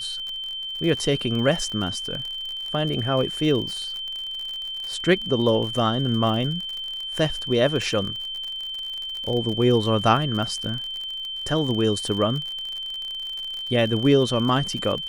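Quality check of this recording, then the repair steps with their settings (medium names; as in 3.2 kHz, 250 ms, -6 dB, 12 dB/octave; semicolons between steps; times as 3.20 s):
crackle 51 per s -29 dBFS
whine 3.1 kHz -29 dBFS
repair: de-click; band-stop 3.1 kHz, Q 30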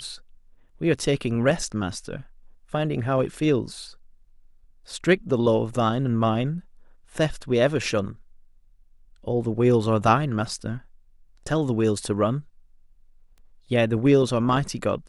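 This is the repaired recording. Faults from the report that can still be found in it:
nothing left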